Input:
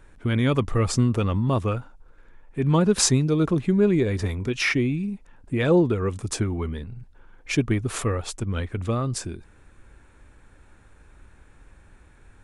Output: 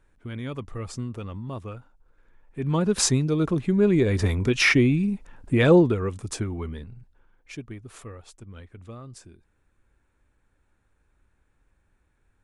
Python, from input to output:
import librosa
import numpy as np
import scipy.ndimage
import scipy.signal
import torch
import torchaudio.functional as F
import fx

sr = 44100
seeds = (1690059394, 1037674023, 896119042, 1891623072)

y = fx.gain(x, sr, db=fx.line((1.75, -12.0), (3.04, -2.0), (3.67, -2.0), (4.33, 4.0), (5.66, 4.0), (6.16, -4.0), (6.82, -4.0), (7.63, -16.0)))